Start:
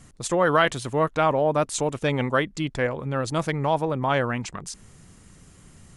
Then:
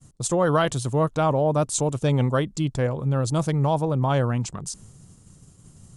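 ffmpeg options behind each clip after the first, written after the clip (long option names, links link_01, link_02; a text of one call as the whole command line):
ffmpeg -i in.wav -af "agate=range=-33dB:threshold=-45dB:ratio=3:detection=peak,equalizer=frequency=125:width_type=o:width=1:gain=8,equalizer=frequency=2000:width_type=o:width=1:gain=-10,equalizer=frequency=8000:width_type=o:width=1:gain=5" out.wav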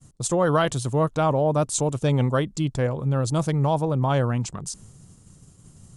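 ffmpeg -i in.wav -af anull out.wav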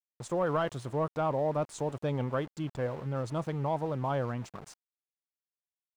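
ffmpeg -i in.wav -filter_complex "[0:a]aeval=exprs='val(0)*gte(abs(val(0)),0.0188)':channel_layout=same,asplit=2[link_01][link_02];[link_02]highpass=frequency=720:poles=1,volume=10dB,asoftclip=type=tanh:threshold=-9dB[link_03];[link_01][link_03]amix=inputs=2:normalize=0,lowpass=frequency=1000:poles=1,volume=-6dB,volume=-8dB" out.wav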